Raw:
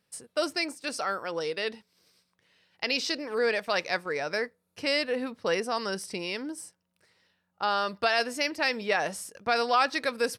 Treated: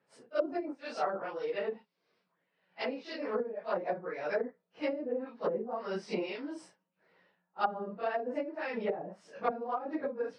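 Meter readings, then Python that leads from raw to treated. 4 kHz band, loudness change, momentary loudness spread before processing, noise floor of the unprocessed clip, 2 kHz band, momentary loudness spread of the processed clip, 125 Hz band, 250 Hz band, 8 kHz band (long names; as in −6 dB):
−18.5 dB, −7.0 dB, 8 LU, −78 dBFS, −13.0 dB, 6 LU, −4.0 dB, −3.0 dB, below −20 dB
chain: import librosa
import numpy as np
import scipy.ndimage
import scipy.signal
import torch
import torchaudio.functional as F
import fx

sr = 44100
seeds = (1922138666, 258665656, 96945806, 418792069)

y = fx.phase_scramble(x, sr, seeds[0], window_ms=100)
y = y * (1.0 - 0.69 / 2.0 + 0.69 / 2.0 * np.cos(2.0 * np.pi * 1.8 * (np.arange(len(y)) / sr)))
y = fx.env_lowpass(y, sr, base_hz=2000.0, full_db=-29.5)
y = scipy.signal.sosfilt(scipy.signal.butter(4, 150.0, 'highpass', fs=sr, output='sos'), y)
y = fx.high_shelf(y, sr, hz=4800.0, db=-3.5)
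y = fx.env_lowpass_down(y, sr, base_hz=300.0, full_db=-26.0)
y = fx.rider(y, sr, range_db=3, speed_s=0.5)
y = fx.peak_eq(y, sr, hz=700.0, db=4.5, octaves=1.4)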